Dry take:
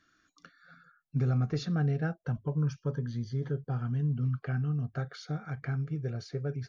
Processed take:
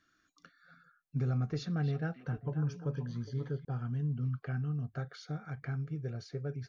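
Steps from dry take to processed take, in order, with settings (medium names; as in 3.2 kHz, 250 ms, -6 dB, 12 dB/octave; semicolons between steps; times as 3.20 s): 1.36–3.65 s: repeats whose band climbs or falls 266 ms, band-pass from 2.6 kHz, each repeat -1.4 oct, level -4 dB; trim -4 dB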